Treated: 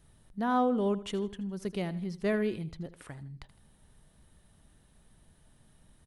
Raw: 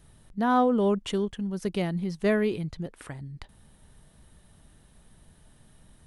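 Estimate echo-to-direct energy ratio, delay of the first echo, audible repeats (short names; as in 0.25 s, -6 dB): -15.5 dB, 80 ms, 2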